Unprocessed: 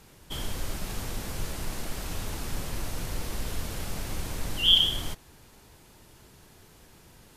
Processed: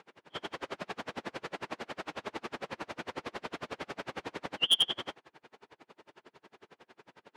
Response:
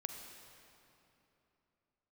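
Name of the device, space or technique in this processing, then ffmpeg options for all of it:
helicopter radio: -af "highpass=350,lowpass=2.5k,aeval=exprs='val(0)*pow(10,-36*(0.5-0.5*cos(2*PI*11*n/s))/20)':c=same,asoftclip=type=hard:threshold=-26.5dB,volume=8.5dB"

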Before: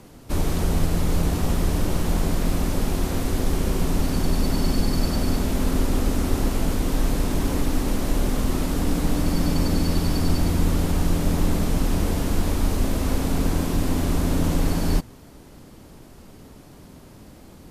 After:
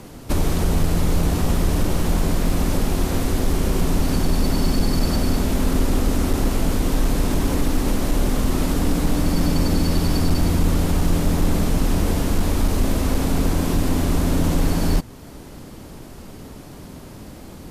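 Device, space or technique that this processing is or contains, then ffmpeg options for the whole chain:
clipper into limiter: -af "asoftclip=type=hard:threshold=-13dB,alimiter=limit=-17.5dB:level=0:latency=1:release=322,volume=7dB"

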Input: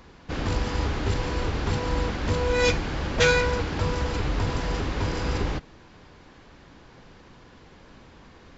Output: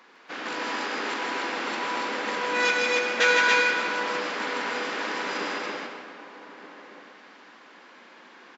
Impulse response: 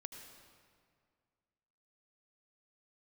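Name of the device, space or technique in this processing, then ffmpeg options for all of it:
stadium PA: -filter_complex "[0:a]highpass=f=200:w=0.5412,highpass=f=200:w=1.3066,highpass=f=520:p=1,lowshelf=f=140:t=q:w=1.5:g=-11,equalizer=f=1.7k:t=o:w=2.1:g=8,asplit=2[a][b];[b]adelay=1224,volume=-14dB,highshelf=f=4k:g=-27.6[c];[a][c]amix=inputs=2:normalize=0,aecho=1:1:157.4|282.8:0.631|0.794[d];[1:a]atrim=start_sample=2205[e];[d][e]afir=irnorm=-1:irlink=0"

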